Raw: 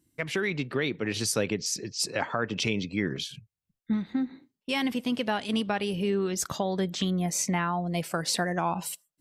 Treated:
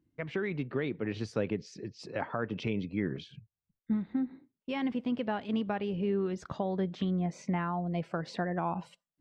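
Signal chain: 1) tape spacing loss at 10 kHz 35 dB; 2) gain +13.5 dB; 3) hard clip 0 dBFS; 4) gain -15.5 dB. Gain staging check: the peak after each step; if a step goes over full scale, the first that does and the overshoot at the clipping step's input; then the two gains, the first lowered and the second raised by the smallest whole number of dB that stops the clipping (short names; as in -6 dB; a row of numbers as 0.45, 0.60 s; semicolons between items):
-16.5, -3.0, -3.0, -18.5 dBFS; no overload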